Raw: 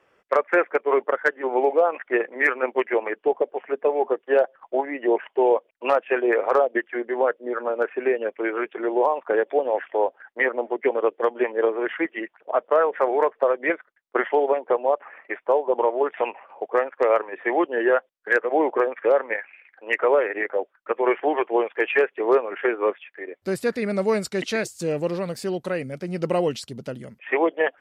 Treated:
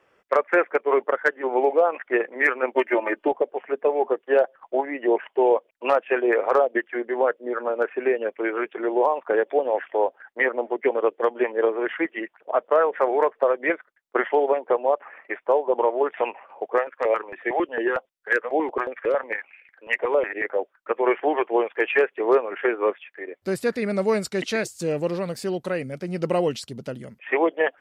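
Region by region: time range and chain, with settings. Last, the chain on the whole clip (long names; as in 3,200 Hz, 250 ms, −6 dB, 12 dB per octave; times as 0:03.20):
0:02.75–0:03.32: running median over 3 samples + comb filter 3.3 ms, depth 76% + multiband upward and downward compressor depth 70%
0:16.78–0:20.44: parametric band 84 Hz −6 dB 1.8 octaves + notch on a step sequencer 11 Hz 280–1,700 Hz
whole clip: no processing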